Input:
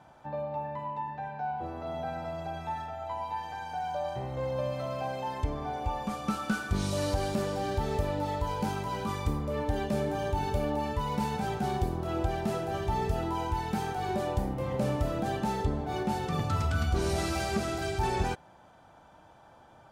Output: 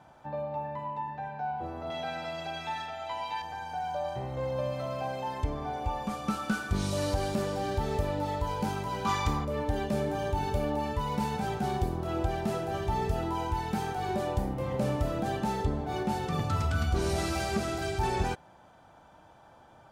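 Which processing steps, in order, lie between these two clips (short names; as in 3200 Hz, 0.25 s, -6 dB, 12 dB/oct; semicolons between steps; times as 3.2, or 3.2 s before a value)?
1.9–3.42 weighting filter D; 9.05–9.45 spectral gain 650–7500 Hz +8 dB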